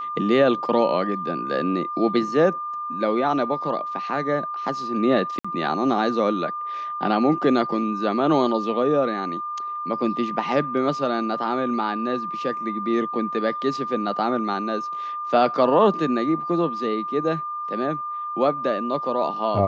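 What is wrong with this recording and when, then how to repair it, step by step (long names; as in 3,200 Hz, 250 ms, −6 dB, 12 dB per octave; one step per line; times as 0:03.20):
whistle 1,200 Hz −27 dBFS
0:05.39–0:05.45: drop-out 55 ms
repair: notch filter 1,200 Hz, Q 30
repair the gap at 0:05.39, 55 ms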